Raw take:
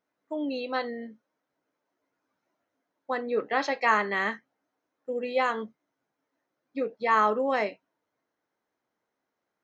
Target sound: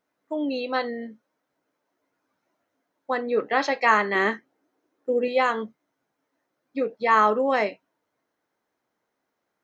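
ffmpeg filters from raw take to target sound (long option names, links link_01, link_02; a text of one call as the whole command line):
ffmpeg -i in.wav -filter_complex "[0:a]asettb=1/sr,asplit=3[link_01][link_02][link_03];[link_01]atrim=end=4.154[link_04];[link_02]atrim=start=4.15:end=5.28,asetpts=PTS-STARTPTS,afade=type=in:duration=0.004:curve=qsin,afade=type=out:start_time=1.126:duration=0.004:curve=qsin,equalizer=frequency=350:width_type=o:width=0.82:gain=10[link_05];[link_03]atrim=start=5.276[link_06];[link_04][link_05]acrossfade=duration=0.004:curve1=hsin:curve2=qsin[link_07];[link_07][link_06]acrossfade=duration=0.004:curve1=qsin:curve2=hsin,volume=4dB" out.wav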